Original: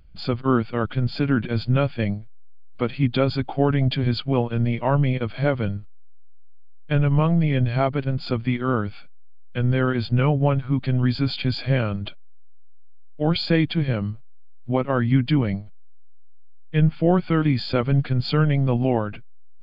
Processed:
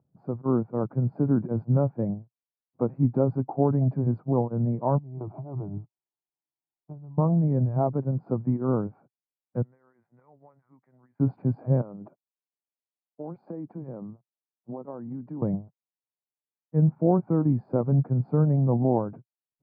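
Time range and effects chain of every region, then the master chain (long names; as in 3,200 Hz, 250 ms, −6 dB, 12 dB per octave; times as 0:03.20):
0:04.98–0:07.18: phaser with its sweep stopped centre 340 Hz, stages 8 + compressor whose output falls as the input rises −32 dBFS
0:09.62–0:11.20: resonant band-pass 2,000 Hz, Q 7.7 + downward compressor 12 to 1, threshold −46 dBFS
0:11.81–0:15.42: high-pass filter 210 Hz + downward compressor, threshold −33 dBFS
whole clip: automatic gain control gain up to 7.5 dB; elliptic band-pass filter 120–940 Hz, stop band 50 dB; level −7 dB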